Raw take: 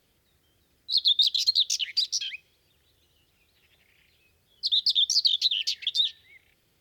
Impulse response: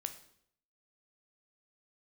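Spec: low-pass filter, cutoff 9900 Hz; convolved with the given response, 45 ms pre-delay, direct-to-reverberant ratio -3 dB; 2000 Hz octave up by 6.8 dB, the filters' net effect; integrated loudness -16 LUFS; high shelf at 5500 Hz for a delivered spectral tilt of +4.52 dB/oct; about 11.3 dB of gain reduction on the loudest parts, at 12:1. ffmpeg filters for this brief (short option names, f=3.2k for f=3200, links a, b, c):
-filter_complex "[0:a]lowpass=9.9k,equalizer=f=2k:t=o:g=8,highshelf=f=5.5k:g=6.5,acompressor=threshold=-26dB:ratio=12,asplit=2[a][b];[1:a]atrim=start_sample=2205,adelay=45[c];[b][c]afir=irnorm=-1:irlink=0,volume=4.5dB[d];[a][d]amix=inputs=2:normalize=0,volume=8dB"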